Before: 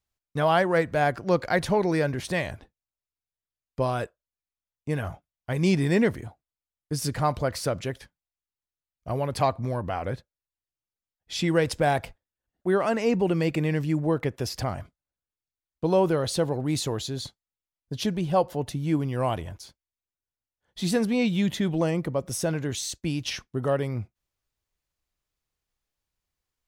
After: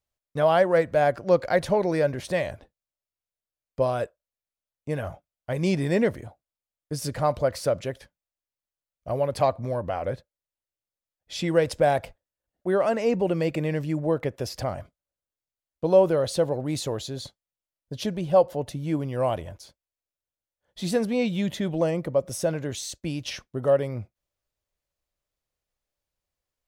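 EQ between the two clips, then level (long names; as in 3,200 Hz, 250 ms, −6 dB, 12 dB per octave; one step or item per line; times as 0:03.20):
parametric band 570 Hz +9 dB 0.5 octaves
−2.5 dB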